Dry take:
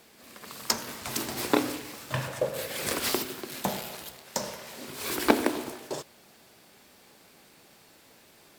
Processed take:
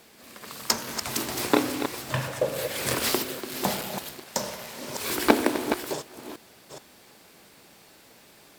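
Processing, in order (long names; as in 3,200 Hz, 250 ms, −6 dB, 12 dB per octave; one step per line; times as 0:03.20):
delay that plays each chunk backwards 424 ms, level −8 dB
level +2.5 dB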